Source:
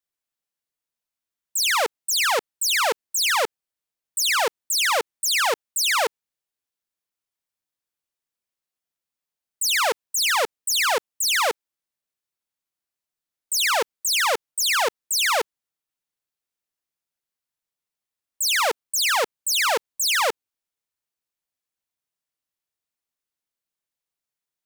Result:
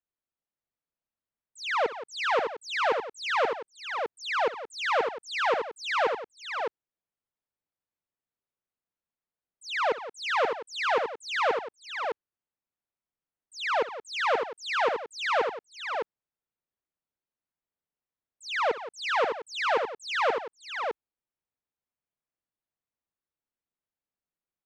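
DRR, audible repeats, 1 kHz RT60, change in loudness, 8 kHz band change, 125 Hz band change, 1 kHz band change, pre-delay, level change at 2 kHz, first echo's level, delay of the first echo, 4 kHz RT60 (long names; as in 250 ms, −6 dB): no reverb audible, 4, no reverb audible, −8.0 dB, −25.0 dB, can't be measured, −2.5 dB, no reverb audible, −6.0 dB, −16.5 dB, 63 ms, no reverb audible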